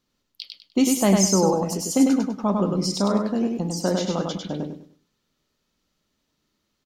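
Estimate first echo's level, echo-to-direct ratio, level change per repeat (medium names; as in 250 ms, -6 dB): -3.5 dB, -3.0 dB, -11.0 dB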